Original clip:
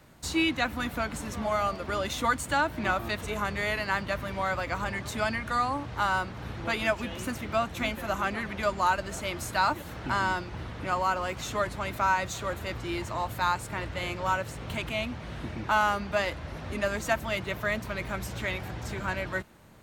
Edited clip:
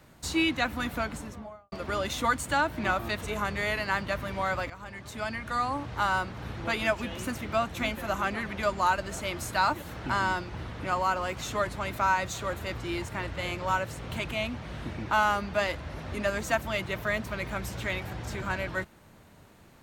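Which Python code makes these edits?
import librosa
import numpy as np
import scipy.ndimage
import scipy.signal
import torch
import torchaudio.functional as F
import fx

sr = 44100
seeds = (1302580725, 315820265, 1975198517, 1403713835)

y = fx.studio_fade_out(x, sr, start_s=0.97, length_s=0.75)
y = fx.edit(y, sr, fx.fade_in_from(start_s=4.7, length_s=1.15, floor_db=-15.0),
    fx.cut(start_s=13.08, length_s=0.58), tone=tone)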